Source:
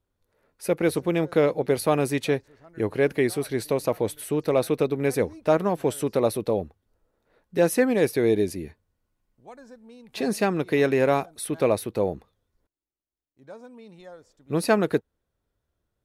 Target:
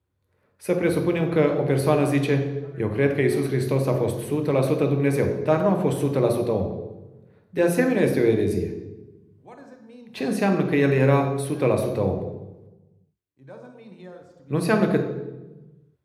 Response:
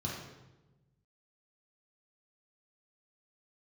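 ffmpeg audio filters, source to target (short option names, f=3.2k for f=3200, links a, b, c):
-filter_complex "[0:a]asplit=2[a][b];[1:a]atrim=start_sample=2205,highshelf=f=9.4k:g=6.5[c];[b][c]afir=irnorm=-1:irlink=0,volume=-6dB[d];[a][d]amix=inputs=2:normalize=0"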